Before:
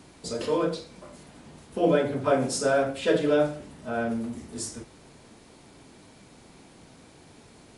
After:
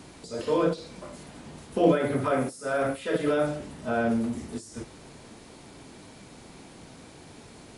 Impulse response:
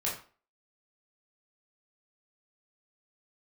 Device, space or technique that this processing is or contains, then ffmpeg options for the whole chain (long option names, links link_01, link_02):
de-esser from a sidechain: -filter_complex "[0:a]asettb=1/sr,asplit=3[link_01][link_02][link_03];[link_01]atrim=end=1.924[link_04];[link_02]atrim=start=1.92:end=3.47,asetpts=PTS-STARTPTS,afade=type=in:duration=0.004:curve=qsin,afade=type=out:start_time=1.546:duration=0.004:curve=qsin,equalizer=frequency=1250:width_type=o:width=0.33:gain=7,equalizer=frequency=2000:width_type=o:width=0.33:gain=6,equalizer=frequency=10000:width_type=o:width=0.33:gain=12[link_05];[link_03]atrim=start=3.466[link_06];[link_04][link_05]acrossfade=duration=0.004:curve1=hsin:curve2=qsin[link_07];[link_07][link_06]acrossfade=duration=0.004:curve1=qsin:curve2=hsin,asplit=2[link_08][link_09];[link_09]highpass=4200,apad=whole_len=342728[link_10];[link_08][link_10]sidechaincompress=threshold=-50dB:ratio=6:attack=1.4:release=21,volume=4dB"